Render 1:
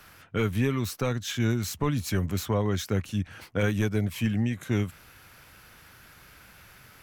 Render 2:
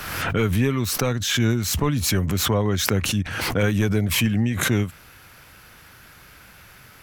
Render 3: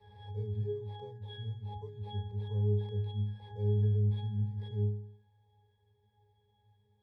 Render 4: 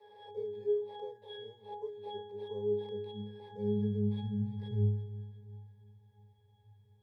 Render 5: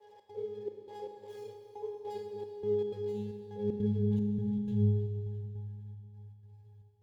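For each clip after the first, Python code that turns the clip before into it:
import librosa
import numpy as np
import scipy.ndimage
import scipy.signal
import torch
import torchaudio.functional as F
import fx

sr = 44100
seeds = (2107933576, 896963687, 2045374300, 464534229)

y1 = fx.pre_swell(x, sr, db_per_s=40.0)
y1 = y1 * librosa.db_to_amplitude(4.5)
y2 = fx.sample_hold(y1, sr, seeds[0], rate_hz=6800.0, jitter_pct=0)
y2 = fx.fixed_phaser(y2, sr, hz=610.0, stages=4)
y2 = fx.octave_resonator(y2, sr, note='G#', decay_s=0.62)
y3 = fx.filter_sweep_highpass(y2, sr, from_hz=450.0, to_hz=99.0, start_s=1.97, end_s=5.52, q=2.6)
y3 = fx.echo_feedback(y3, sr, ms=348, feedback_pct=49, wet_db=-16)
y4 = scipy.signal.medfilt(y3, 15)
y4 = fx.step_gate(y4, sr, bpm=154, pattern='xx.xxxx..', floor_db=-60.0, edge_ms=4.5)
y4 = fx.rev_schroeder(y4, sr, rt60_s=3.1, comb_ms=30, drr_db=4.5)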